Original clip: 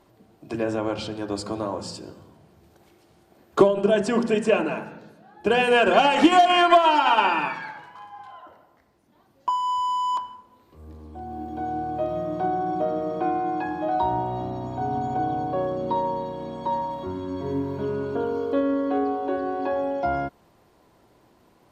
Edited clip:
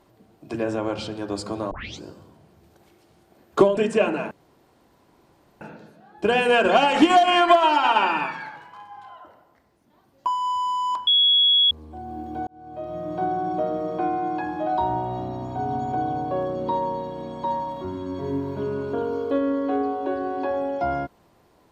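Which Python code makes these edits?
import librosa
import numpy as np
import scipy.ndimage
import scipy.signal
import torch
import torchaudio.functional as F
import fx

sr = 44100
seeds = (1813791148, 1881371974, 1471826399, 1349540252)

y = fx.edit(x, sr, fx.tape_start(start_s=1.71, length_s=0.31),
    fx.cut(start_s=3.77, length_s=0.52),
    fx.insert_room_tone(at_s=4.83, length_s=1.3),
    fx.bleep(start_s=10.29, length_s=0.64, hz=3350.0, db=-14.0),
    fx.fade_in_span(start_s=11.69, length_s=0.77), tone=tone)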